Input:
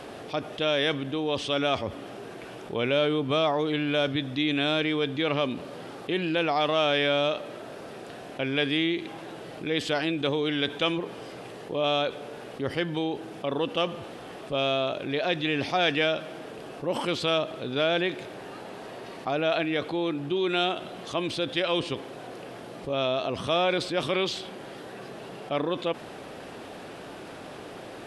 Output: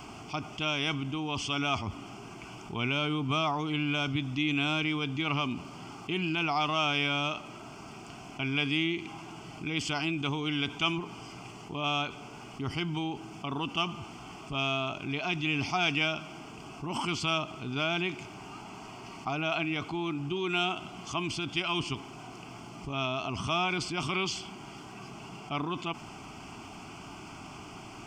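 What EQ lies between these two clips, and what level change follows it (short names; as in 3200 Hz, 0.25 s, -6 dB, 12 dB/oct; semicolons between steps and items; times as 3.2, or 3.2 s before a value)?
low shelf 96 Hz +6 dB; high shelf 5600 Hz +7.5 dB; fixed phaser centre 2600 Hz, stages 8; 0.0 dB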